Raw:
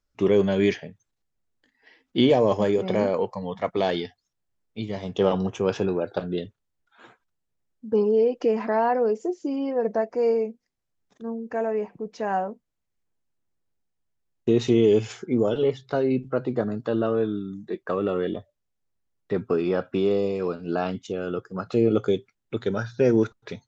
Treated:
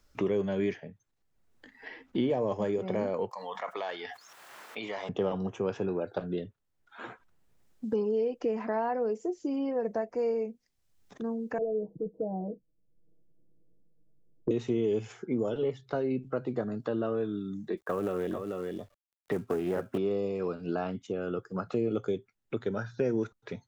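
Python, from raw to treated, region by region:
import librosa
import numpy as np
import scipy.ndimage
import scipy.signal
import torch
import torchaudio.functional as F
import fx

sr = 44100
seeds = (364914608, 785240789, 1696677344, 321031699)

y = fx.chain(x, sr, fx.highpass(hz=1200.0, slope=12),
    fx.peak_eq(hz=2100.0, db=-5.0, octaves=1.4),
    fx.env_flatten(amount_pct=70), at=(3.31, 5.09))
y = fx.chain(y, sr, fx.steep_lowpass(hz=560.0, slope=36),
    fx.comb(ms=6.3, depth=0.92), at=(11.58, 14.51))
y = fx.chain(y, sr, fx.echo_single(ms=440, db=-8.5),
    fx.quant_companded(bits=6),
    fx.doppler_dist(depth_ms=0.26), at=(17.77, 19.98))
y = fx.dynamic_eq(y, sr, hz=4200.0, q=1.1, threshold_db=-50.0, ratio=4.0, max_db=-6)
y = fx.band_squash(y, sr, depth_pct=70)
y = y * 10.0 ** (-7.5 / 20.0)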